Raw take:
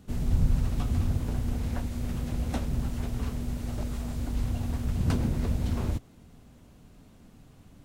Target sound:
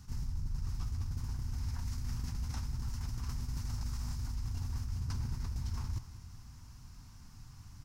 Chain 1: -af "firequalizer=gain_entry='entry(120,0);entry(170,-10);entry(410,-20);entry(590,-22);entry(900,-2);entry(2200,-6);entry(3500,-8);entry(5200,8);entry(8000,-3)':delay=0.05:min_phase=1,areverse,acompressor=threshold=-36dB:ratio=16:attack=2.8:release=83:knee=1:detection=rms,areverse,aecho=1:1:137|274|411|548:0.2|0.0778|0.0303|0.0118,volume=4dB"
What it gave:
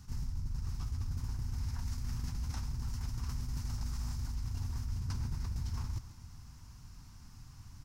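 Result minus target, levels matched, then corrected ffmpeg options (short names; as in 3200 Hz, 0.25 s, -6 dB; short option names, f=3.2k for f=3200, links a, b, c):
echo 51 ms early
-af "firequalizer=gain_entry='entry(120,0);entry(170,-10);entry(410,-20);entry(590,-22);entry(900,-2);entry(2200,-6);entry(3500,-8);entry(5200,8);entry(8000,-3)':delay=0.05:min_phase=1,areverse,acompressor=threshold=-36dB:ratio=16:attack=2.8:release=83:knee=1:detection=rms,areverse,aecho=1:1:188|376|564|752:0.2|0.0778|0.0303|0.0118,volume=4dB"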